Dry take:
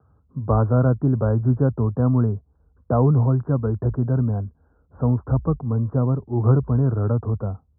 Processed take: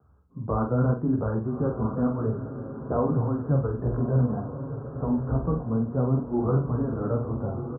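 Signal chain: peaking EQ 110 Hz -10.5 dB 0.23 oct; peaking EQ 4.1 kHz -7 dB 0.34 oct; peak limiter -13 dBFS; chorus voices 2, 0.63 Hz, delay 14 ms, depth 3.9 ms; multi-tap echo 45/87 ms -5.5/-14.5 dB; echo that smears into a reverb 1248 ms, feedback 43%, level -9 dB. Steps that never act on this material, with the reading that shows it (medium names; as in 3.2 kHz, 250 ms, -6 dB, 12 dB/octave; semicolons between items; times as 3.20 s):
peaking EQ 4.1 kHz: input has nothing above 1.1 kHz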